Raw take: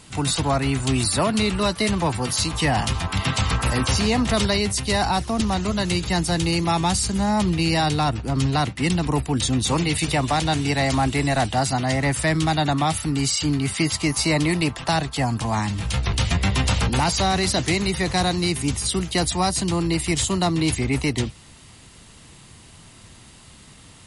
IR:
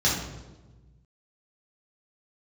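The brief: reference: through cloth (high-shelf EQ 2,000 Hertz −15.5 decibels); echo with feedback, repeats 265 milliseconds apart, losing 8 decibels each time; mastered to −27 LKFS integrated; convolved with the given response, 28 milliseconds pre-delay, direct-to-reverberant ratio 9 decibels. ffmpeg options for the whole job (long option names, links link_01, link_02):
-filter_complex "[0:a]aecho=1:1:265|530|795|1060|1325:0.398|0.159|0.0637|0.0255|0.0102,asplit=2[link_01][link_02];[1:a]atrim=start_sample=2205,adelay=28[link_03];[link_02][link_03]afir=irnorm=-1:irlink=0,volume=-23dB[link_04];[link_01][link_04]amix=inputs=2:normalize=0,highshelf=frequency=2000:gain=-15.5,volume=-5.5dB"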